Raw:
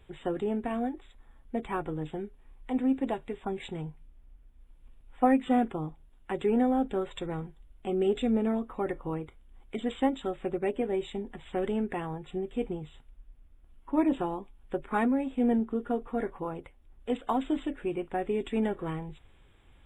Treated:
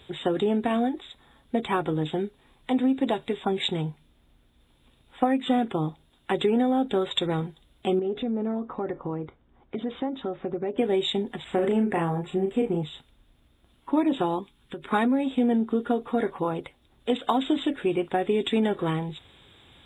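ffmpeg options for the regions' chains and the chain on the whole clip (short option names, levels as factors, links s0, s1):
-filter_complex "[0:a]asettb=1/sr,asplit=3[s0][s1][s2];[s0]atrim=end=7.994[s3];[s1]atrim=start=7.99:end=10.78,asetpts=PTS-STARTPTS,afade=t=in:d=0.004:c=qsin,afade=t=out:st=2.786:d=0.004:c=qsin,lowpass=1400,acompressor=threshold=0.0158:ratio=3:attack=3.2:release=140:knee=1:detection=peak[s4];[s2]atrim=start=10.776[s5];[s3][s4]acrossfade=d=0.004:c1=hsin:c2=qsin[s6];[s6][s5]acrossfade=d=0.004:c1=qsin:c2=hsin,asettb=1/sr,asplit=3[s7][s8][s9];[s7]atrim=end=11.444[s10];[s8]atrim=start=11.44:end=12.83,asetpts=PTS-STARTPTS,afade=t=in:d=0.004:c=qsin,afade=t=out:st=1.386:d=0.004:c=qsin,equalizer=f=3600:t=o:w=0.6:g=-13.5,asplit=2[s11][s12];[s12]adelay=36,volume=0.562[s13];[s11][s13]amix=inputs=2:normalize=0,atrim=end_sample=61299[s14];[s9]atrim=start=12.826[s15];[s10][s14]acrossfade=d=0.004:c1=hsin:c2=qsin[s16];[s16][s15]acrossfade=d=0.004:c1=qsin:c2=hsin,asettb=1/sr,asplit=3[s17][s18][s19];[s17]atrim=end=14.394[s20];[s18]atrim=start=14.39:end=14.86,asetpts=PTS-STARTPTS,afade=t=in:d=0.004:c=qsin,afade=t=out:st=0.466:d=0.004:c=qsin,equalizer=f=660:t=o:w=0.57:g=-13,acompressor=threshold=0.0112:ratio=12:attack=3.2:release=140:knee=1:detection=peak[s21];[s19]atrim=start=14.856[s22];[s20][s21]acrossfade=d=0.004:c1=hsin:c2=qsin[s23];[s23][s22]acrossfade=d=0.004:c1=qsin:c2=hsin,highpass=100,equalizer=f=3700:w=3.5:g=13,acompressor=threshold=0.0398:ratio=6,volume=2.66"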